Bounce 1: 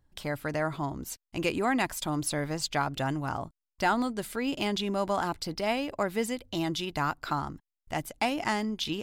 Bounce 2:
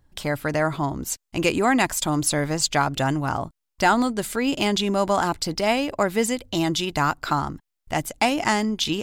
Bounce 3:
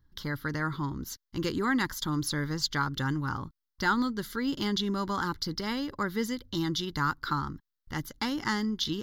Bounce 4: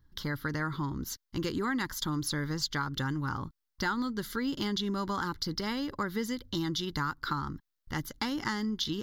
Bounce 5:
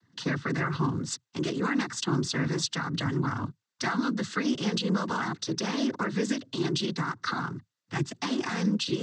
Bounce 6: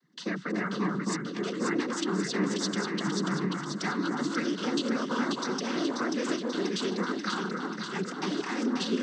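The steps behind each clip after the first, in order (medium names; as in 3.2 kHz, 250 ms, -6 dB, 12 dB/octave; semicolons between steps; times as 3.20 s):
dynamic bell 7.2 kHz, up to +6 dB, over -54 dBFS, Q 2.1; trim +7.5 dB
static phaser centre 2.5 kHz, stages 6; trim -4.5 dB
compression 3:1, threshold -31 dBFS, peak gain reduction 8 dB; trim +1.5 dB
peak limiter -25 dBFS, peak gain reduction 8.5 dB; noise-vocoded speech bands 16; trim +6 dB
echo whose repeats swap between lows and highs 268 ms, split 1.4 kHz, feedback 78%, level -2 dB; frequency shift +45 Hz; trim -3.5 dB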